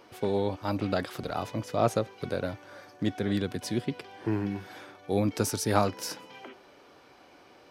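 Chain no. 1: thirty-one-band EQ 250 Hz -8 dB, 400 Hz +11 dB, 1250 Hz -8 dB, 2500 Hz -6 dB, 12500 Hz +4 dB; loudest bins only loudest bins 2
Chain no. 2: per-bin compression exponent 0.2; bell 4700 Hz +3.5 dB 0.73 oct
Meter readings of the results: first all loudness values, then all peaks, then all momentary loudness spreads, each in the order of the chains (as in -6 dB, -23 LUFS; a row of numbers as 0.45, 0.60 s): -31.5, -21.5 LUFS; -15.5, -3.5 dBFS; 23, 4 LU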